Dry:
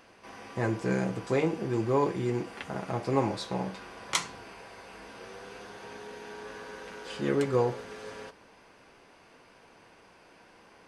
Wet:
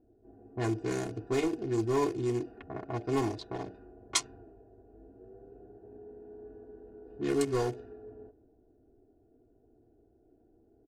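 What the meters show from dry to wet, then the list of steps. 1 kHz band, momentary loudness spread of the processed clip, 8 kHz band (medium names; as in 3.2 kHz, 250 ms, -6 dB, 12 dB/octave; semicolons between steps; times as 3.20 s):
-5.0 dB, 21 LU, +2.0 dB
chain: local Wiener filter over 41 samples; in parallel at -5.5 dB: wavefolder -23 dBFS; on the sum: level-controlled noise filter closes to 490 Hz, open at -21.5 dBFS; tone controls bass +3 dB, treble +13 dB; comb 2.8 ms, depth 90%; trim -8 dB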